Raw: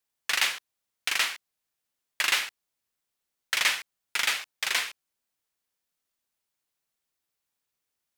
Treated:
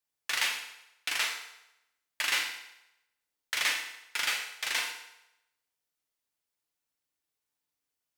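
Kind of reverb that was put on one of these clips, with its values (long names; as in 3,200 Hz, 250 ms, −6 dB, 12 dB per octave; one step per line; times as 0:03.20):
feedback delay network reverb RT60 0.88 s, low-frequency decay 0.75×, high-frequency decay 0.9×, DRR 2 dB
level −5.5 dB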